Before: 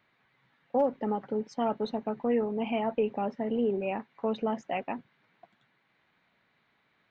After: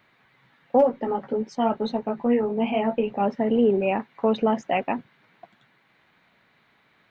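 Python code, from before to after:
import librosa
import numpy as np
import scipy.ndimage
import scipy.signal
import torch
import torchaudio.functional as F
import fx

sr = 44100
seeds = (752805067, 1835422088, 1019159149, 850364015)

y = fx.chorus_voices(x, sr, voices=4, hz=1.4, base_ms=15, depth_ms=3.0, mix_pct=40, at=(0.8, 3.19), fade=0.02)
y = y * librosa.db_to_amplitude(8.5)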